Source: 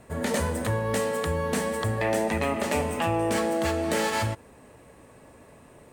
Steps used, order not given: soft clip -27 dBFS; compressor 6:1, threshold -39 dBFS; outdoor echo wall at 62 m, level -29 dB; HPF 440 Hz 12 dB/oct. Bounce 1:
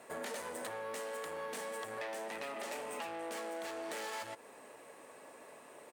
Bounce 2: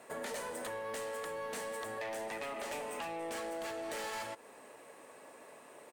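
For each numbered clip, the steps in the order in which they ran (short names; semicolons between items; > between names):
soft clip > HPF > compressor > outdoor echo; HPF > soft clip > compressor > outdoor echo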